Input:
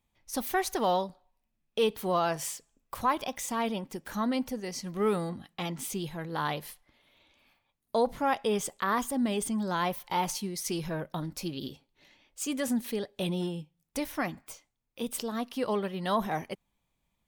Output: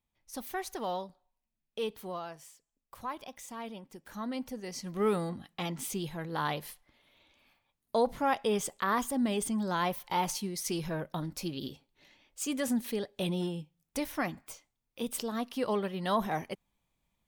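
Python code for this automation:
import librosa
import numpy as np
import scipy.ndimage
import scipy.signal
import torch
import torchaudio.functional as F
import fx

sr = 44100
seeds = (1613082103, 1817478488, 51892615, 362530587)

y = fx.gain(x, sr, db=fx.line((1.98, -8.0), (2.52, -19.0), (3.0, -11.0), (3.87, -11.0), (5.0, -1.0)))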